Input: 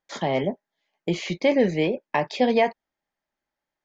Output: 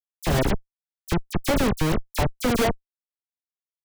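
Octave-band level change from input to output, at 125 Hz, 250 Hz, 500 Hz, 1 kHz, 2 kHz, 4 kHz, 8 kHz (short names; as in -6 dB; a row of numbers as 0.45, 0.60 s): +6.5 dB, 0.0 dB, -4.0 dB, -1.5 dB, -0.5 dB, +1.5 dB, n/a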